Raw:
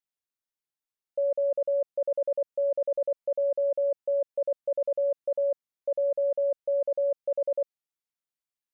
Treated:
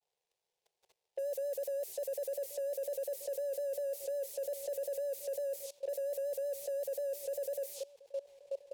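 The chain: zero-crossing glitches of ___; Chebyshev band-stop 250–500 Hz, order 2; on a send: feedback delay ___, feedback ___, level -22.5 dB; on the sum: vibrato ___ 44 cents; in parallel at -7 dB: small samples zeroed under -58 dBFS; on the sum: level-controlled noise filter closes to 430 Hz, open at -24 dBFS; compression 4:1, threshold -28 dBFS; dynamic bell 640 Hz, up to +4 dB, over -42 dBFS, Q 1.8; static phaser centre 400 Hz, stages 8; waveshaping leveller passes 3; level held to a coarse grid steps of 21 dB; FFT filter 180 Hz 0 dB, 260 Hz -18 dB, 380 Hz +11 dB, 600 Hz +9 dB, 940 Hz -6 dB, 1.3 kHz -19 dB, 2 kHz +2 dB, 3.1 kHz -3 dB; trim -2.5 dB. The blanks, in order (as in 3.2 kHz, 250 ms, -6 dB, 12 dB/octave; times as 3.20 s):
-32 dBFS, 1128 ms, 35%, 5.6 Hz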